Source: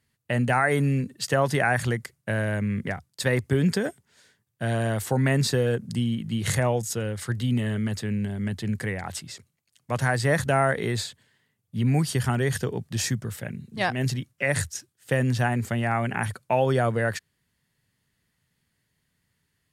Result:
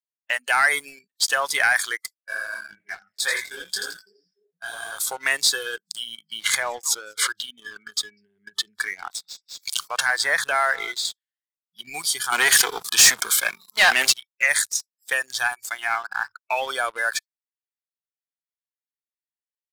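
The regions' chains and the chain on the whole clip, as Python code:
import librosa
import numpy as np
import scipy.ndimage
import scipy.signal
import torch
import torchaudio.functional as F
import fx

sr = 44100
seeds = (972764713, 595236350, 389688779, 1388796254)

y = fx.chain(x, sr, fx.echo_split(split_hz=690.0, low_ms=301, high_ms=84, feedback_pct=52, wet_db=-5.5),
    fx.detune_double(cents=57), at=(2.14, 4.98))
y = fx.chain(y, sr, fx.high_shelf(hz=4800.0, db=-10.5),
    fx.echo_single(ms=201, db=-18.5),
    fx.pre_swell(db_per_s=51.0), at=(6.41, 11.05))
y = fx.chain(y, sr, fx.leveller(passes=3),
    fx.highpass(hz=190.0, slope=12),
    fx.sustainer(db_per_s=58.0), at=(12.32, 14.13))
y = fx.chain(y, sr, fx.steep_lowpass(hz=1800.0, slope=36),
    fx.backlash(play_db=-42.5),
    fx.peak_eq(hz=580.0, db=-11.5, octaves=0.38), at=(15.95, 16.45))
y = fx.noise_reduce_blind(y, sr, reduce_db=30)
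y = scipy.signal.sosfilt(scipy.signal.butter(2, 1500.0, 'highpass', fs=sr, output='sos'), y)
y = fx.leveller(y, sr, passes=2)
y = y * librosa.db_to_amplitude(3.0)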